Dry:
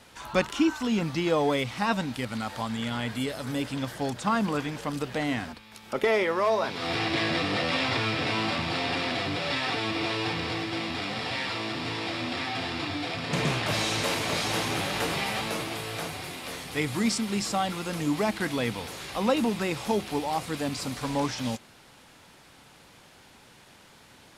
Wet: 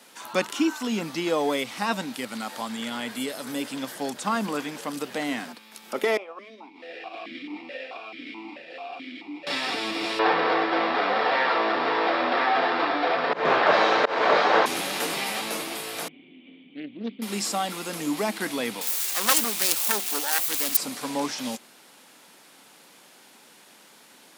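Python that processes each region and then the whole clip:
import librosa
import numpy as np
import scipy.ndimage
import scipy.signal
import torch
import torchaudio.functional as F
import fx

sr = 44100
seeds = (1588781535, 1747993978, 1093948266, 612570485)

y = fx.chain(x, sr, fx.transient(attack_db=3, sustain_db=-5),
    fx.vowel_held(hz=4.6), at=(6.17, 9.47))
y = fx.chain(y, sr, fx.band_shelf(hz=840.0, db=13.0, octaves=2.5),
    fx.auto_swell(attack_ms=184.0),
    fx.lowpass(hz=4300.0, slope=24), at=(10.19, 14.66))
y = fx.chain(y, sr, fx.formant_cascade(vowel='i'),
    fx.doppler_dist(depth_ms=0.55), at=(16.08, 17.22))
y = fx.chain(y, sr, fx.self_delay(depth_ms=0.59),
    fx.tilt_eq(slope=3.5), at=(18.81, 20.77))
y = scipy.signal.sosfilt(scipy.signal.butter(4, 200.0, 'highpass', fs=sr, output='sos'), y)
y = fx.high_shelf(y, sr, hz=8100.0, db=11.0)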